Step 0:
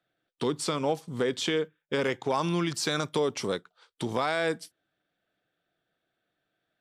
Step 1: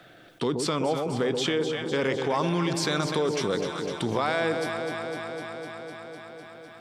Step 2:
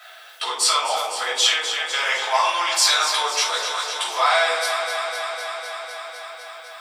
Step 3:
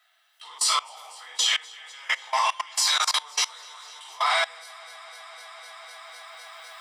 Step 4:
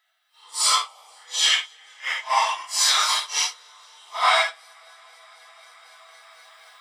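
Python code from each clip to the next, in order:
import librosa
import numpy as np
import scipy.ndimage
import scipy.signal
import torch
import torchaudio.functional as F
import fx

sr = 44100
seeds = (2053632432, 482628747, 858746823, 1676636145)

y1 = fx.high_shelf(x, sr, hz=6700.0, db=-7.0)
y1 = fx.echo_alternate(y1, sr, ms=126, hz=820.0, feedback_pct=79, wet_db=-7.5)
y1 = fx.env_flatten(y1, sr, amount_pct=50)
y2 = scipy.signal.sosfilt(scipy.signal.butter(4, 730.0, 'highpass', fs=sr, output='sos'), y1)
y2 = fx.tilt_eq(y2, sr, slope=2.5)
y2 = fx.room_shoebox(y2, sr, seeds[0], volume_m3=410.0, walls='furnished', distance_m=6.6)
y3 = fx.highpass(y2, sr, hz=1100.0, slope=6)
y3 = y3 + 0.38 * np.pad(y3, (int(1.0 * sr / 1000.0), 0))[:len(y3)]
y3 = fx.level_steps(y3, sr, step_db=22)
y4 = fx.phase_scramble(y3, sr, seeds[1], window_ms=200)
y4 = fx.upward_expand(y4, sr, threshold_db=-41.0, expansion=1.5)
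y4 = y4 * librosa.db_to_amplitude(5.0)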